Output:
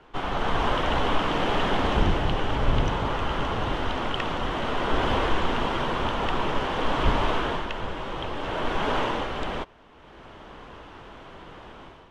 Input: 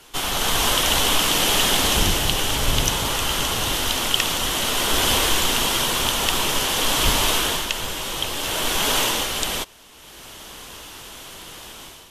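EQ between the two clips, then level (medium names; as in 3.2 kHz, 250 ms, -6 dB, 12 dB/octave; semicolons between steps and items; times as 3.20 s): low-pass 1.5 kHz 12 dB/octave; 0.0 dB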